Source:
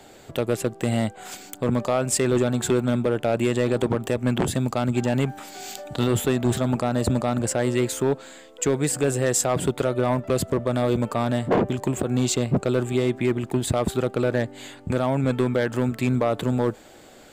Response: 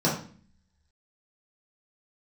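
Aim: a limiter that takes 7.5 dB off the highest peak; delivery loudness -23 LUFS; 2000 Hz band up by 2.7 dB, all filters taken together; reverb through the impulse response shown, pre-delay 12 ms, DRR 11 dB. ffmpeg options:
-filter_complex "[0:a]equalizer=f=2k:t=o:g=3.5,alimiter=limit=-18dB:level=0:latency=1,asplit=2[a][b];[1:a]atrim=start_sample=2205,adelay=12[c];[b][c]afir=irnorm=-1:irlink=0,volume=-24.5dB[d];[a][d]amix=inputs=2:normalize=0,volume=4.5dB"

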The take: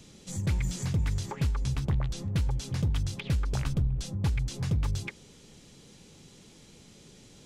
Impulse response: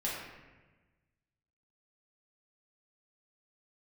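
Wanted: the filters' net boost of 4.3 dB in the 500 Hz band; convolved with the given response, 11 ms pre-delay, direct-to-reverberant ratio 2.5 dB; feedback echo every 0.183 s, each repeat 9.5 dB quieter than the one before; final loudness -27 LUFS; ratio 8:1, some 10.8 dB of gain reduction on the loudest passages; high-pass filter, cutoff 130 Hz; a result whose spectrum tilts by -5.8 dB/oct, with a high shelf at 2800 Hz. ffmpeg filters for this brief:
-filter_complex "[0:a]highpass=130,equalizer=f=500:t=o:g=5.5,highshelf=f=2.8k:g=-6,acompressor=threshold=-37dB:ratio=8,aecho=1:1:183|366|549|732:0.335|0.111|0.0365|0.012,asplit=2[a][b];[1:a]atrim=start_sample=2205,adelay=11[c];[b][c]afir=irnorm=-1:irlink=0,volume=-7.5dB[d];[a][d]amix=inputs=2:normalize=0,volume=13dB"

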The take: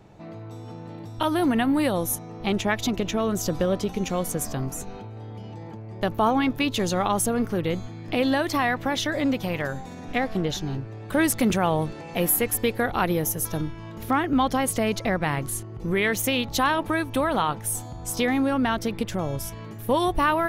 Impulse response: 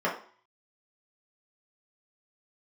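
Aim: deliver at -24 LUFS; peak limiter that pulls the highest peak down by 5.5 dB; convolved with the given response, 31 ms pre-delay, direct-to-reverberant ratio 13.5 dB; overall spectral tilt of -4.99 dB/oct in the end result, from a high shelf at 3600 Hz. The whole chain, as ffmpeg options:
-filter_complex "[0:a]highshelf=f=3.6k:g=-4,alimiter=limit=-16dB:level=0:latency=1,asplit=2[a][b];[1:a]atrim=start_sample=2205,adelay=31[c];[b][c]afir=irnorm=-1:irlink=0,volume=-25.5dB[d];[a][d]amix=inputs=2:normalize=0,volume=3dB"

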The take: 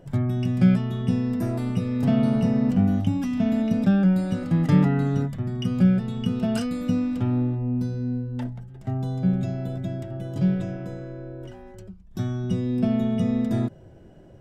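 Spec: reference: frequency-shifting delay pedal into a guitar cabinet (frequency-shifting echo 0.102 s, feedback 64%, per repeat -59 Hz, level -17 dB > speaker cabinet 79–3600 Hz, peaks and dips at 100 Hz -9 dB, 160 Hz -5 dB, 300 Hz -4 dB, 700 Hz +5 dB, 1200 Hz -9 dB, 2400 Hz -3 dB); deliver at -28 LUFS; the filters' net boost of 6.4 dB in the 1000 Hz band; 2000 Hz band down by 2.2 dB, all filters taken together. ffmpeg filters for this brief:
-filter_complex "[0:a]equalizer=f=1k:t=o:g=9,equalizer=f=2k:t=o:g=-4,asplit=7[a][b][c][d][e][f][g];[b]adelay=102,afreqshift=-59,volume=-17dB[h];[c]adelay=204,afreqshift=-118,volume=-20.9dB[i];[d]adelay=306,afreqshift=-177,volume=-24.8dB[j];[e]adelay=408,afreqshift=-236,volume=-28.6dB[k];[f]adelay=510,afreqshift=-295,volume=-32.5dB[l];[g]adelay=612,afreqshift=-354,volume=-36.4dB[m];[a][h][i][j][k][l][m]amix=inputs=7:normalize=0,highpass=79,equalizer=f=100:t=q:w=4:g=-9,equalizer=f=160:t=q:w=4:g=-5,equalizer=f=300:t=q:w=4:g=-4,equalizer=f=700:t=q:w=4:g=5,equalizer=f=1.2k:t=q:w=4:g=-9,equalizer=f=2.4k:t=q:w=4:g=-3,lowpass=f=3.6k:w=0.5412,lowpass=f=3.6k:w=1.3066,volume=-2.5dB"

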